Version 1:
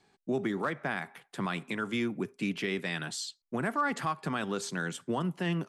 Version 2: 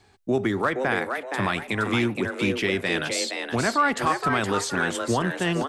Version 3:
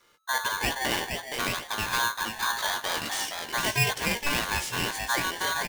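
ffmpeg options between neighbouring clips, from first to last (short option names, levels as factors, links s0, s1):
-filter_complex "[0:a]lowshelf=f=120:t=q:w=3:g=7.5,asplit=2[s0][s1];[s1]asplit=4[s2][s3][s4][s5];[s2]adelay=469,afreqshift=130,volume=0.531[s6];[s3]adelay=938,afreqshift=260,volume=0.176[s7];[s4]adelay=1407,afreqshift=390,volume=0.0575[s8];[s5]adelay=1876,afreqshift=520,volume=0.0191[s9];[s6][s7][s8][s9]amix=inputs=4:normalize=0[s10];[s0][s10]amix=inputs=2:normalize=0,volume=2.66"
-filter_complex "[0:a]acrossover=split=270[s0][s1];[s0]acrusher=samples=20:mix=1:aa=0.000001[s2];[s1]asplit=2[s3][s4];[s4]adelay=17,volume=0.531[s5];[s3][s5]amix=inputs=2:normalize=0[s6];[s2][s6]amix=inputs=2:normalize=0,aeval=exprs='val(0)*sgn(sin(2*PI*1300*n/s))':c=same,volume=0.562"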